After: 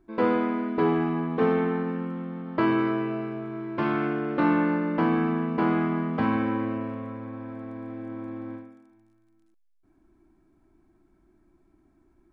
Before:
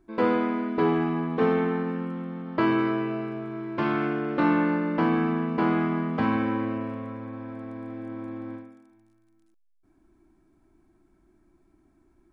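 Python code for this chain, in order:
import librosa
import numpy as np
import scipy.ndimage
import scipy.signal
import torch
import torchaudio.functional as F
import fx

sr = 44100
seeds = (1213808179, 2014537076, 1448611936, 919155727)

y = fx.high_shelf(x, sr, hz=4100.0, db=-5.5)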